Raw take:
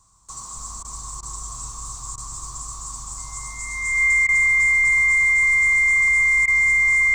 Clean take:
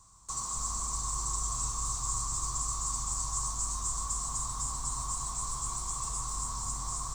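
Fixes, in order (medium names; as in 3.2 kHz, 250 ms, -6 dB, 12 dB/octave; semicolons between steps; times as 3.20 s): band-stop 2.1 kHz, Q 30; interpolate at 0.83/1.21/2.16/4.27/6.46 s, 16 ms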